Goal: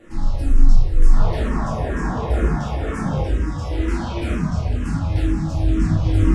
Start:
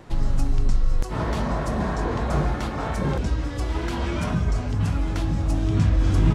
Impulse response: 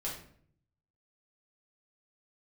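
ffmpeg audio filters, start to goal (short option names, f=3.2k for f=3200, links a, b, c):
-filter_complex "[0:a]asettb=1/sr,asplit=3[a][b][c];[a]atrim=end=1.504[d];[b]atrim=start=1.5:end=3.72,asetpts=PTS-STARTPTS,afade=t=in:d=0.004:c=qsin,afade=t=out:st=2.216:d=0.004:c=qsin,bandreject=f=4.2k:w=5.5[e];[c]atrim=start=3.716[f];[d][e]acrossfade=d=0.004:c1=hsin:c2=qsin[g];[g][f]acrossfade=d=0.004:c1=qsin:c2=hsin[h];[1:a]atrim=start_sample=2205,asetrate=23814,aresample=44100[i];[h][i]afir=irnorm=-1:irlink=0,asplit=2[j][k];[k]afreqshift=-2.1[l];[j][l]amix=inputs=2:normalize=1,volume=-2.5dB"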